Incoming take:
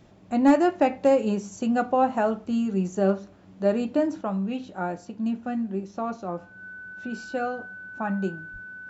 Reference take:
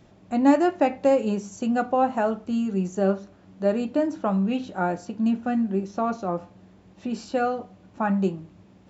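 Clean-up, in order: clip repair -10.5 dBFS; band-stop 1.5 kHz, Q 30; de-plosive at 8.52 s; gain correction +4.5 dB, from 4.21 s

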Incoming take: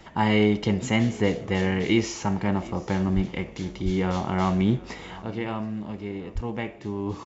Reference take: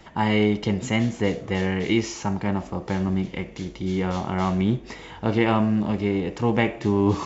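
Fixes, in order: 3.15–3.27 s: high-pass 140 Hz 24 dB/octave; 3.84–3.96 s: high-pass 140 Hz 24 dB/octave; 6.34–6.46 s: high-pass 140 Hz 24 dB/octave; inverse comb 728 ms -21 dB; trim 0 dB, from 5.22 s +10 dB

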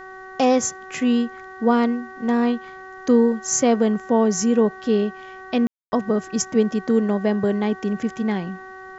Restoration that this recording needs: de-hum 377.8 Hz, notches 5; room tone fill 5.67–5.92 s; expander -31 dBFS, range -21 dB

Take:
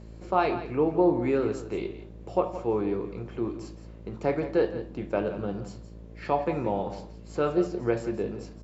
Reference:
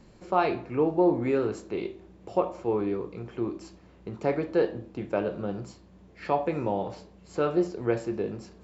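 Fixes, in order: de-hum 55.6 Hz, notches 11; inverse comb 170 ms -12.5 dB

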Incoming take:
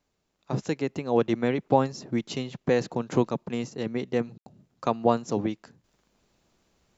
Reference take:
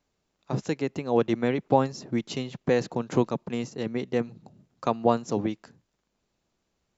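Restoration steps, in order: room tone fill 4.38–4.46 s; trim 0 dB, from 5.84 s -8.5 dB

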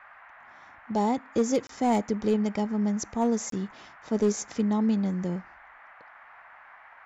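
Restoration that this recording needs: clip repair -16.5 dBFS; interpolate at 1.67/3.50 s, 23 ms; noise print and reduce 21 dB

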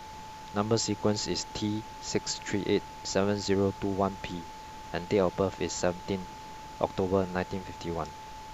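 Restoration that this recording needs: de-hum 366.6 Hz, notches 39; band-stop 870 Hz, Q 30; noise reduction 30 dB, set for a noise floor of -44 dBFS

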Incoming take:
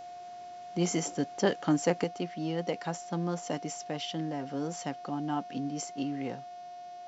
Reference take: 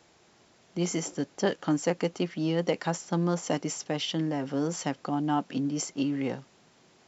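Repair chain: de-hum 362.5 Hz, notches 17; band-stop 710 Hz, Q 30; gain correction +5.5 dB, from 2.04 s

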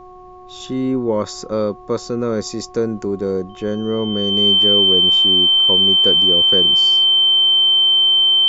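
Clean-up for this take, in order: de-hum 365.7 Hz, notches 3; band-stop 3.1 kHz, Q 30; expander -28 dBFS, range -21 dB

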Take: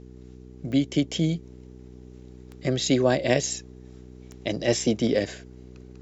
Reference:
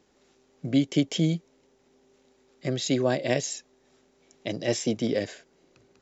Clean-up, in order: de-click; de-hum 62.4 Hz, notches 7; gain correction -3.5 dB, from 1.43 s

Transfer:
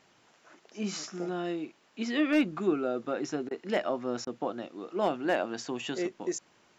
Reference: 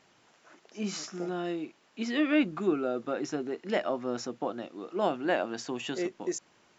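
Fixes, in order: clip repair -17 dBFS; interpolate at 3.49/4.25 s, 18 ms

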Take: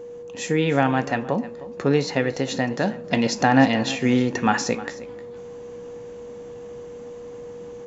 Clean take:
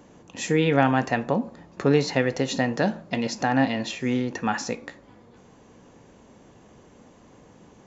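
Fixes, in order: band-stop 480 Hz, Q 30; inverse comb 309 ms -17 dB; gain correction -5.5 dB, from 3.04 s

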